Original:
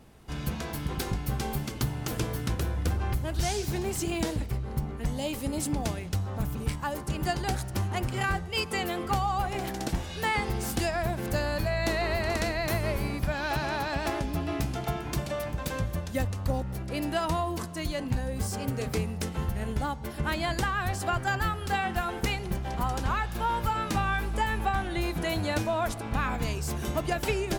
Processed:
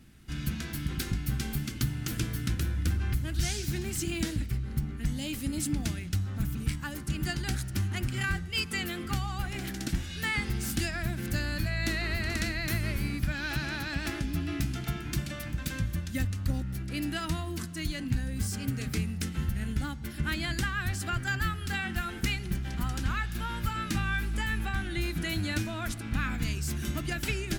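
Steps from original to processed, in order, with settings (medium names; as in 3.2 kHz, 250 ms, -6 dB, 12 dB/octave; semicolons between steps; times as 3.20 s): high-order bell 670 Hz -13.5 dB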